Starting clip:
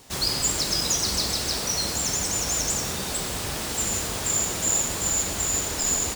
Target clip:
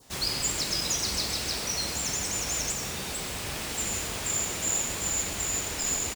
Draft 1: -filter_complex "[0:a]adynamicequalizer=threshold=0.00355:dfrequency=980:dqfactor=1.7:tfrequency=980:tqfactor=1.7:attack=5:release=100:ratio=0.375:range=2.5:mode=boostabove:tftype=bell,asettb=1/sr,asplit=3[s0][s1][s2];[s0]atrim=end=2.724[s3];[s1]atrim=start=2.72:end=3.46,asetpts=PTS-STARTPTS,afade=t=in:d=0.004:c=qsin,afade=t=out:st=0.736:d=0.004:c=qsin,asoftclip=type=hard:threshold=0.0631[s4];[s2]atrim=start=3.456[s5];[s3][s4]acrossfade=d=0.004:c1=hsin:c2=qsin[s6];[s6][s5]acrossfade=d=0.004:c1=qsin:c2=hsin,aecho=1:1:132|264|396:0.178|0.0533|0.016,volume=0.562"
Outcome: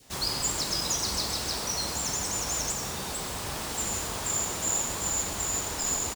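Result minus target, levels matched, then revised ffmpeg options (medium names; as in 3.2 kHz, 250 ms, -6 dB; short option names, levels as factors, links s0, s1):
1 kHz band +3.5 dB
-filter_complex "[0:a]adynamicequalizer=threshold=0.00355:dfrequency=2400:dqfactor=1.7:tfrequency=2400:tqfactor=1.7:attack=5:release=100:ratio=0.375:range=2.5:mode=boostabove:tftype=bell,asettb=1/sr,asplit=3[s0][s1][s2];[s0]atrim=end=2.724[s3];[s1]atrim=start=2.72:end=3.46,asetpts=PTS-STARTPTS,afade=t=in:d=0.004:c=qsin,afade=t=out:st=0.736:d=0.004:c=qsin,asoftclip=type=hard:threshold=0.0631[s4];[s2]atrim=start=3.456[s5];[s3][s4]acrossfade=d=0.004:c1=hsin:c2=qsin[s6];[s6][s5]acrossfade=d=0.004:c1=qsin:c2=hsin,aecho=1:1:132|264|396:0.178|0.0533|0.016,volume=0.562"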